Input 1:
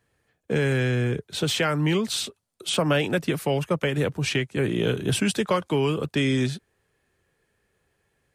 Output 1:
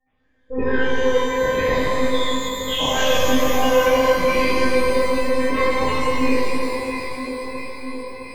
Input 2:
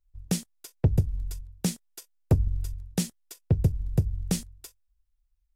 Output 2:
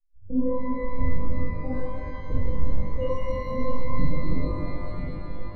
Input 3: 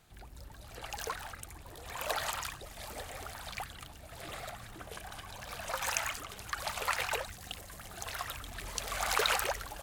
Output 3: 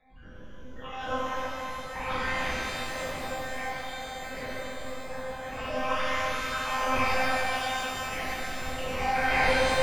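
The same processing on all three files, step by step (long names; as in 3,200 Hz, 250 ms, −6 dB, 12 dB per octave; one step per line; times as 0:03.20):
parametric band 560 Hz +9.5 dB 0.68 octaves
all-pass phaser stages 8, 0.52 Hz, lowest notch 140–1,100 Hz
tape wow and flutter 110 cents
stiff-string resonator 99 Hz, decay 0.52 s, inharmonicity 0.002
one-pitch LPC vocoder at 8 kHz 260 Hz
delay that swaps between a low-pass and a high-pass 330 ms, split 1,400 Hz, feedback 80%, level −7.5 dB
gate on every frequency bin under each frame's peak −20 dB strong
in parallel at −6.5 dB: sine wavefolder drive 7 dB, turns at −22.5 dBFS
on the sum: reverb with rising layers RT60 2.7 s, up +12 semitones, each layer −8 dB, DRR −10.5 dB
level +2.5 dB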